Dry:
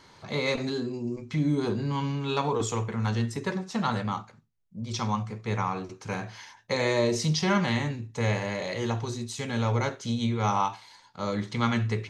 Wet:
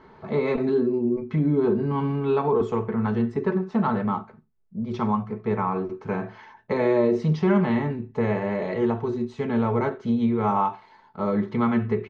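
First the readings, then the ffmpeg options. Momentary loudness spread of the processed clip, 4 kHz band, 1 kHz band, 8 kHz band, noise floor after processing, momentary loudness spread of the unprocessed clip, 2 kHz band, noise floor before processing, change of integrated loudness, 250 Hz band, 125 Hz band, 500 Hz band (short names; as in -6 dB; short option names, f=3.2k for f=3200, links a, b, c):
8 LU, -12.5 dB, +3.0 dB, under -20 dB, -54 dBFS, 10 LU, -2.5 dB, -56 dBFS, +4.5 dB, +6.5 dB, +0.5 dB, +7.0 dB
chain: -filter_complex "[0:a]lowpass=1.4k,equalizer=f=370:w=5.9:g=8,aecho=1:1:4.6:0.5,asplit=2[a][b];[b]alimiter=limit=-19.5dB:level=0:latency=1:release=308,volume=2.5dB[c];[a][c]amix=inputs=2:normalize=0,volume=-2.5dB"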